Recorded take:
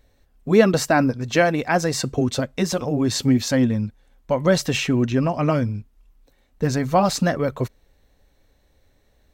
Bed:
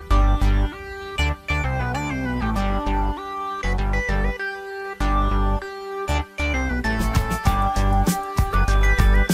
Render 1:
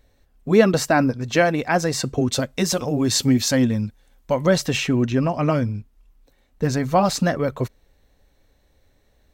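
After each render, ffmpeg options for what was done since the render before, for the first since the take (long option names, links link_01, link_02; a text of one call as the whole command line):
ffmpeg -i in.wav -filter_complex "[0:a]asettb=1/sr,asplit=3[link_01][link_02][link_03];[link_01]atrim=end=2.324[link_04];[link_02]atrim=start=2.32:end=4.47,asetpts=PTS-STARTPTS,afade=type=in:duration=0.004:curve=qsin,afade=type=out:start_time=2.146:duration=0.004:curve=qsin,highshelf=frequency=3600:gain=7[link_05];[link_03]atrim=start=4.466[link_06];[link_04][link_05]acrossfade=duration=0.004:curve1=hsin:curve2=qsin[link_07];[link_07][link_06]acrossfade=duration=0.004:curve1=qsin:curve2=hsin" out.wav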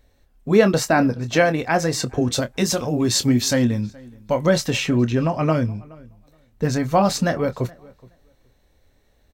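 ffmpeg -i in.wav -filter_complex "[0:a]asplit=2[link_01][link_02];[link_02]adelay=25,volume=-10.5dB[link_03];[link_01][link_03]amix=inputs=2:normalize=0,asplit=2[link_04][link_05];[link_05]adelay=422,lowpass=frequency=2900:poles=1,volume=-23.5dB,asplit=2[link_06][link_07];[link_07]adelay=422,lowpass=frequency=2900:poles=1,volume=0.17[link_08];[link_04][link_06][link_08]amix=inputs=3:normalize=0" out.wav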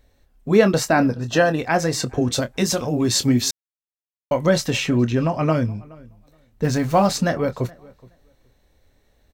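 ffmpeg -i in.wav -filter_complex "[0:a]asettb=1/sr,asplit=3[link_01][link_02][link_03];[link_01]atrim=end=1.154[link_04];[link_02]atrim=start=1.15:end=1.59,asetpts=PTS-STARTPTS,afade=type=in:duration=0.004:curve=qsin,afade=type=out:start_time=0.436:duration=0.004:curve=qsin,asuperstop=centerf=2200:order=8:qfactor=5.5[link_05];[link_03]atrim=start=1.586[link_06];[link_04][link_05]acrossfade=duration=0.004:curve1=hsin:curve2=qsin[link_07];[link_07][link_06]acrossfade=duration=0.004:curve1=qsin:curve2=hsin,asettb=1/sr,asplit=3[link_08][link_09][link_10];[link_08]atrim=end=6.644[link_11];[link_09]atrim=start=6.64:end=7.07,asetpts=PTS-STARTPTS,afade=type=in:duration=0.004:curve=qsin,afade=type=out:start_time=0.426:duration=0.004:curve=qsin,aeval=exprs='val(0)+0.5*0.0224*sgn(val(0))':channel_layout=same[link_12];[link_10]atrim=start=7.066[link_13];[link_11][link_12]acrossfade=duration=0.004:curve1=hsin:curve2=qsin[link_14];[link_14][link_13]acrossfade=duration=0.004:curve1=qsin:curve2=hsin,asplit=3[link_15][link_16][link_17];[link_15]atrim=end=3.51,asetpts=PTS-STARTPTS,afade=type=out:start_time=3.506:duration=0.004:curve=hsin[link_18];[link_16]atrim=start=3.51:end=4.31,asetpts=PTS-STARTPTS,volume=0[link_19];[link_17]atrim=start=4.31,asetpts=PTS-STARTPTS,afade=type=in:duration=0.004:curve=hsin[link_20];[link_18][link_19][link_20]concat=n=3:v=0:a=1" out.wav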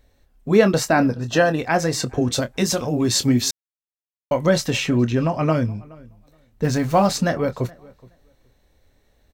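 ffmpeg -i in.wav -af anull out.wav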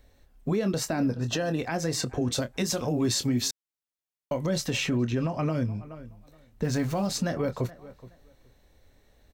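ffmpeg -i in.wav -filter_complex "[0:a]acrossover=split=480|3000[link_01][link_02][link_03];[link_02]acompressor=threshold=-25dB:ratio=6[link_04];[link_01][link_04][link_03]amix=inputs=3:normalize=0,alimiter=limit=-18dB:level=0:latency=1:release=283" out.wav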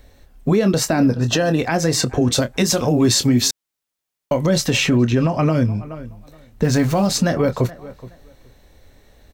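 ffmpeg -i in.wav -af "volume=10.5dB" out.wav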